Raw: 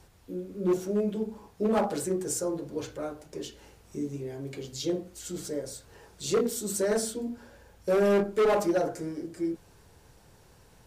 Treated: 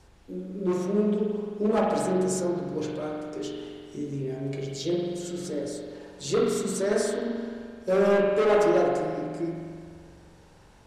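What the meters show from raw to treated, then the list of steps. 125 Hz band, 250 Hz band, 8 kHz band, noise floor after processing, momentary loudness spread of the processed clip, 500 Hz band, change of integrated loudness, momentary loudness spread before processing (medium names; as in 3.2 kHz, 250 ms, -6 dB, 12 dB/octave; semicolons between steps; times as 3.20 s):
+5.0 dB, +3.0 dB, -2.0 dB, -54 dBFS, 16 LU, +3.5 dB, +3.0 dB, 16 LU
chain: low-pass 8.7 kHz 12 dB/octave; spring tank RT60 2 s, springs 43 ms, chirp 20 ms, DRR -1 dB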